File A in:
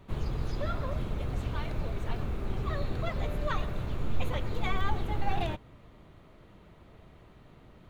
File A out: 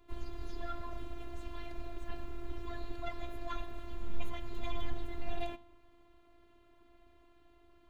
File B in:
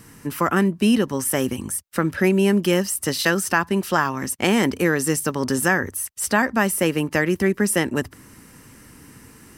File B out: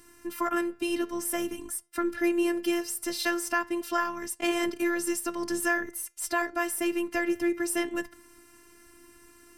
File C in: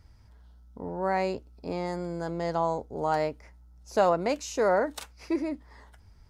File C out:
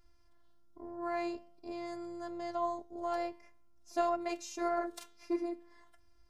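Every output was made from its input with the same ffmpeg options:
ffmpeg -i in.wav -af "aeval=exprs='0.668*(cos(1*acos(clip(val(0)/0.668,-1,1)))-cos(1*PI/2))+0.00473*(cos(8*acos(clip(val(0)/0.668,-1,1)))-cos(8*PI/2))':channel_layout=same,flanger=delay=6.2:depth=5.4:regen=89:speed=0.48:shape=triangular,afftfilt=real='hypot(re,im)*cos(PI*b)':imag='0':win_size=512:overlap=0.75" out.wav

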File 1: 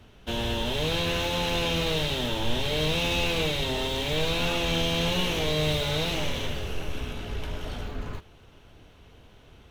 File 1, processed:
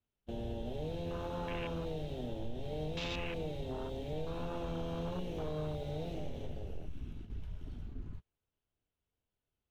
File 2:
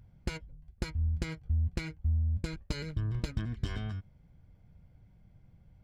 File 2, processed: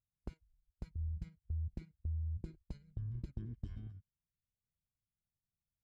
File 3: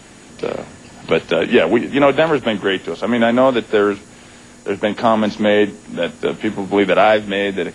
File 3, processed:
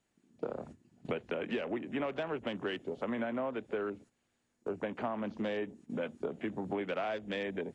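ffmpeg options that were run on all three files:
ffmpeg -i in.wav -af "afwtdn=0.0398,agate=range=-13dB:threshold=-36dB:ratio=16:detection=peak,acompressor=threshold=-25dB:ratio=6,volume=-8.5dB" out.wav

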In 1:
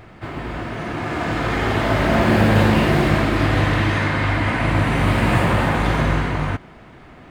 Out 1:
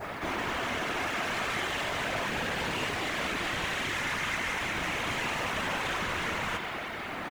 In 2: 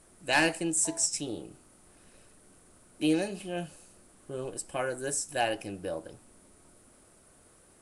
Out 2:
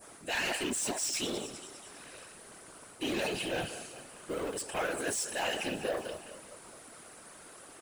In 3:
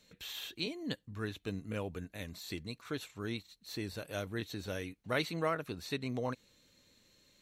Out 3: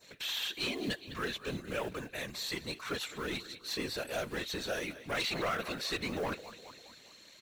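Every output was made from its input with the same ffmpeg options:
ffmpeg -i in.wav -filter_complex "[0:a]adynamicequalizer=threshold=0.00891:dfrequency=3100:dqfactor=0.96:tfrequency=3100:tqfactor=0.96:attack=5:release=100:ratio=0.375:range=3.5:mode=boostabove:tftype=bell,areverse,acompressor=threshold=-28dB:ratio=5,areverse,aecho=1:1:204|408|612|816:0.0944|0.051|0.0275|0.0149,asplit=2[link_01][link_02];[link_02]highpass=frequency=720:poles=1,volume=22dB,asoftclip=type=tanh:threshold=-18.5dB[link_03];[link_01][link_03]amix=inputs=2:normalize=0,lowpass=frequency=5400:poles=1,volume=-6dB,acrossover=split=1700[link_04][link_05];[link_04]acrusher=bits=4:mode=log:mix=0:aa=0.000001[link_06];[link_06][link_05]amix=inputs=2:normalize=0,asoftclip=type=tanh:threshold=-24.5dB,afftfilt=real='hypot(re,im)*cos(2*PI*random(0))':imag='hypot(re,im)*sin(2*PI*random(1))':win_size=512:overlap=0.75,volume=2.5dB" out.wav

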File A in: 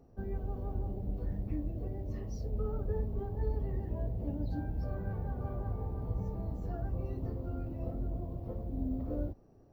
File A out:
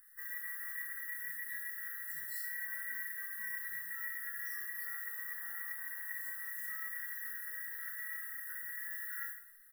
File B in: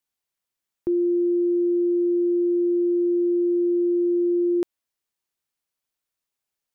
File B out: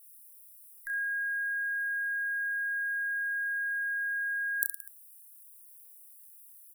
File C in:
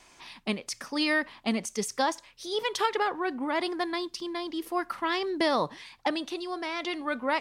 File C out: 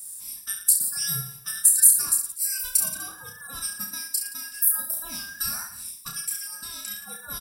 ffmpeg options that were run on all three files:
ffmpeg -i in.wav -filter_complex "[0:a]afftfilt=real='real(if(between(b,1,1012),(2*floor((b-1)/92)+1)*92-b,b),0)':imag='imag(if(between(b,1,1012),(2*floor((b-1)/92)+1)*92-b,b),0)*if(between(b,1,1012),-1,1)':win_size=2048:overlap=0.75,firequalizer=gain_entry='entry(220,0);entry(350,-12);entry(510,-9);entry(860,-14);entry(1300,-8);entry(3200,-5);entry(6600,-7);entry(9500,13)':delay=0.05:min_phase=1,asplit=2[link_01][link_02];[link_02]acompressor=threshold=-37dB:ratio=6,volume=0dB[link_03];[link_01][link_03]amix=inputs=2:normalize=0,aecho=1:1:30|67.5|114.4|173|246.2:0.631|0.398|0.251|0.158|0.1,aexciter=amount=13:drive=2.9:freq=4800,volume=-11.5dB" out.wav

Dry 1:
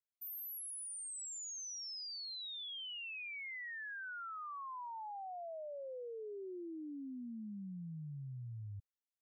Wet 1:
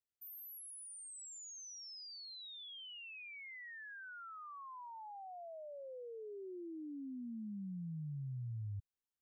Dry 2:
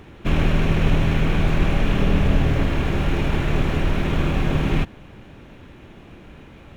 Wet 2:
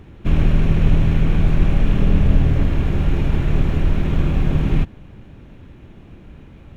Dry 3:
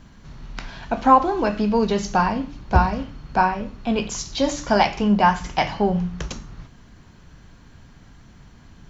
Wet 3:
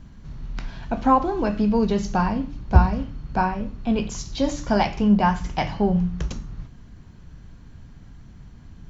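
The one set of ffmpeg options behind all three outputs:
ffmpeg -i in.wav -af "lowshelf=frequency=280:gain=10.5,volume=-5.5dB" out.wav

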